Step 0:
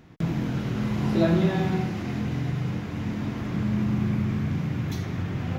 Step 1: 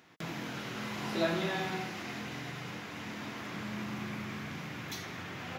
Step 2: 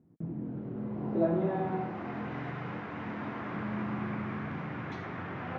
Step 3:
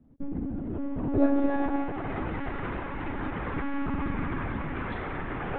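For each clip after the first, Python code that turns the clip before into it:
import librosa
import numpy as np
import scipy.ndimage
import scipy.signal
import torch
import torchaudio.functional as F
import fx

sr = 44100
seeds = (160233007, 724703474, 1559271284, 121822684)

y1 = fx.highpass(x, sr, hz=1200.0, slope=6)
y1 = F.gain(torch.from_numpy(y1), 1.0).numpy()
y2 = fx.filter_sweep_lowpass(y1, sr, from_hz=230.0, to_hz=1400.0, start_s=0.05, end_s=2.43, q=0.9)
y2 = F.gain(torch.from_numpy(y2), 4.5).numpy()
y3 = fx.lpc_monotone(y2, sr, seeds[0], pitch_hz=280.0, order=16)
y3 = F.gain(torch.from_numpy(y3), 5.5).numpy()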